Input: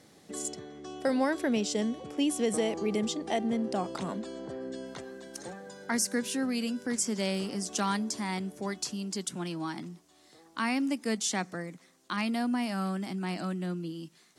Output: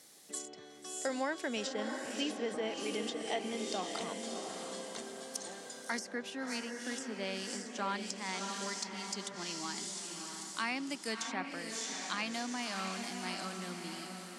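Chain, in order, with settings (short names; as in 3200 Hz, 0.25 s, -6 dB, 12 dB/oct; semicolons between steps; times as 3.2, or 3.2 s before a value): RIAA curve recording; diffused feedback echo 0.657 s, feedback 48%, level -5 dB; treble ducked by the level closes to 2000 Hz, closed at -22 dBFS; gain -5 dB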